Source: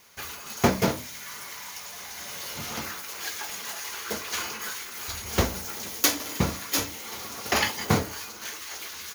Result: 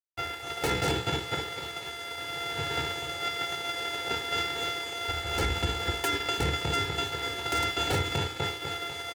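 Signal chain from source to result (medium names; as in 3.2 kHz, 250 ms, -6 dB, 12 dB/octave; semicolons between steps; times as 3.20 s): sorted samples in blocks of 64 samples; Bessel low-pass 3.1 kHz, order 2; feedback delay 247 ms, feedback 46%, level -7.5 dB; dynamic bell 610 Hz, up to -6 dB, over -37 dBFS, Q 0.97; on a send: flutter echo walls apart 9.3 m, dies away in 0.24 s; on the sum: wavefolder -21 dBFS; band-stop 1.2 kHz, Q 6; crossover distortion -46 dBFS; high-pass 80 Hz; comb 2.3 ms, depth 86%; peak limiter -25.5 dBFS, peak gain reduction 10 dB; trim +8 dB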